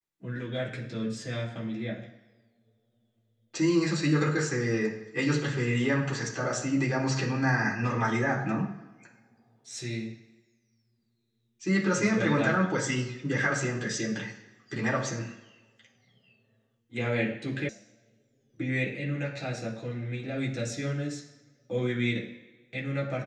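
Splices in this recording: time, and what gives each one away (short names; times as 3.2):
17.69 sound cut off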